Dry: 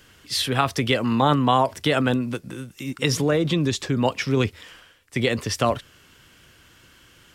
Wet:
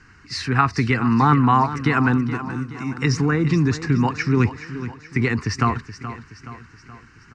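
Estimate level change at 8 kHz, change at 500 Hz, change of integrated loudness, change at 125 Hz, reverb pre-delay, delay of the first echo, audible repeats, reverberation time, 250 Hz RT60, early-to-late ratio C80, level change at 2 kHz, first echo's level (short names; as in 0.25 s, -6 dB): -5.0 dB, -4.5 dB, +2.5 dB, +5.5 dB, none, 0.424 s, 4, none, none, none, +4.0 dB, -13.0 dB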